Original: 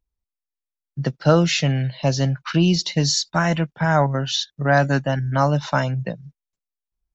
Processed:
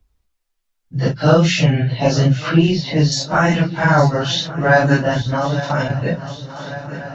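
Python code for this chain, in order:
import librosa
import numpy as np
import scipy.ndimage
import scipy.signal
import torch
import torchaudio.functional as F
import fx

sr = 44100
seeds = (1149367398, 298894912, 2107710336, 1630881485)

y = fx.phase_scramble(x, sr, seeds[0], window_ms=100)
y = fx.air_absorb(y, sr, metres=190.0, at=(2.49, 3.12))
y = fx.level_steps(y, sr, step_db=13, at=(5.19, 6.01))
y = fx.high_shelf(y, sr, hz=6400.0, db=-6.0)
y = fx.hum_notches(y, sr, base_hz=60, count=3)
y = fx.echo_swing(y, sr, ms=1147, ratio=3, feedback_pct=43, wet_db=-18.5)
y = fx.band_squash(y, sr, depth_pct=40)
y = y * librosa.db_to_amplitude(5.5)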